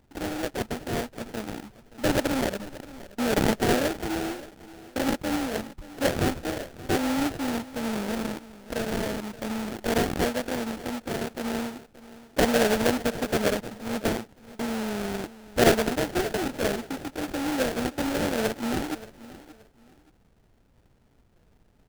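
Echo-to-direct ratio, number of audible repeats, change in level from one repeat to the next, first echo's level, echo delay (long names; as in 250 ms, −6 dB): −17.0 dB, 2, −11.5 dB, −17.5 dB, 576 ms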